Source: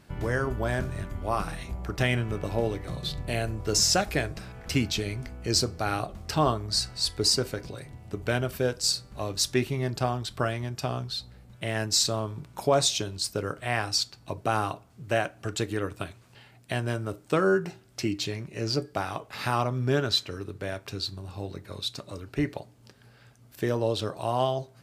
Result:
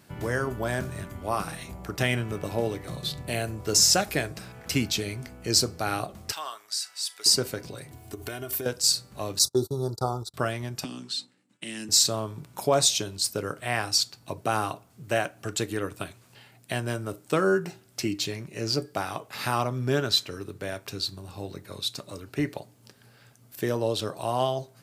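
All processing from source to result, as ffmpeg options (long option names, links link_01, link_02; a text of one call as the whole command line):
ffmpeg -i in.wav -filter_complex "[0:a]asettb=1/sr,asplit=3[link_01][link_02][link_03];[link_01]atrim=end=6.324[link_04];[link_02]atrim=start=6.32:end=7.26,asetpts=PTS-STARTPTS,afade=type=in:duration=0.004:curve=qsin,afade=type=out:start_time=0.936:duration=0.004:curve=qsin,highpass=1400,bandreject=frequency=4300:width=9.4,acompressor=threshold=-32dB:ratio=2:attack=3.2:release=140:knee=1:detection=peak[link_05];[link_03]atrim=start=7.256[link_06];[link_04][link_05]acrossfade=duration=0.004:curve1=hsin:curve2=qsin[link_07];[link_07][link_06]acrossfade=duration=0.004:curve1=qsin:curve2=hsin,asettb=1/sr,asplit=3[link_08][link_09][link_10];[link_08]atrim=end=7.914[link_11];[link_09]atrim=start=7.91:end=8.66,asetpts=PTS-STARTPTS,afade=type=in:duration=0.004:curve=qsin,afade=type=out:start_time=0.746:duration=0.004:curve=qsin,highshelf=frequency=9000:gain=11,aecho=1:1:2.8:0.8,atrim=end_sample=33075,acompressor=threshold=-31dB:ratio=8:attack=3.2:release=140:knee=1:detection=peak[link_12];[link_10]atrim=start=8.656[link_13];[link_11][link_12]acrossfade=duration=0.004:curve1=hsin:curve2=qsin[link_14];[link_14][link_13]acrossfade=duration=0.004:curve1=qsin:curve2=hsin,asettb=1/sr,asplit=3[link_15][link_16][link_17];[link_15]atrim=end=9.394[link_18];[link_16]atrim=start=9.39:end=10.34,asetpts=PTS-STARTPTS,afade=type=in:duration=0.004:curve=qsin,afade=type=out:start_time=0.946:duration=0.004:curve=qsin,asuperstop=centerf=2300:order=12:qfactor=1,agate=range=-31dB:threshold=-35dB:ratio=16:release=100:detection=peak,aecho=1:1:2.3:0.46,atrim=end_sample=41895[link_19];[link_17]atrim=start=10.336[link_20];[link_18][link_19]acrossfade=duration=0.004:curve1=hsin:curve2=qsin[link_21];[link_21][link_20]acrossfade=duration=0.004:curve1=qsin:curve2=hsin,asettb=1/sr,asplit=3[link_22][link_23][link_24];[link_22]atrim=end=10.844[link_25];[link_23]atrim=start=10.84:end=11.89,asetpts=PTS-STARTPTS,afade=type=in:duration=0.004:curve=qsin,afade=type=out:start_time=1.046:duration=0.004:curve=qsin,agate=range=-33dB:threshold=-42dB:ratio=3:release=100:detection=peak,highpass=frequency=190:width=0.5412,highpass=frequency=190:width=1.3066,equalizer=frequency=280:width_type=q:width=4:gain=10,equalizer=frequency=450:width_type=q:width=4:gain=-4,equalizer=frequency=670:width_type=q:width=4:gain=-9,equalizer=frequency=1900:width_type=q:width=4:gain=3,equalizer=frequency=2800:width_type=q:width=4:gain=5,equalizer=frequency=7900:width_type=q:width=4:gain=6,lowpass=frequency=9500:width=0.5412,lowpass=frequency=9500:width=1.3066,acrossover=split=310|3000[link_26][link_27][link_28];[link_27]acompressor=threshold=-46dB:ratio=6:attack=3.2:release=140:knee=2.83:detection=peak[link_29];[link_26][link_29][link_28]amix=inputs=3:normalize=0[link_30];[link_24]atrim=start=11.886[link_31];[link_25][link_30]acrossfade=duration=0.004:curve1=hsin:curve2=qsin[link_32];[link_32][link_31]acrossfade=duration=0.004:curve1=qsin:curve2=hsin,highpass=100,highshelf=frequency=7600:gain=10" out.wav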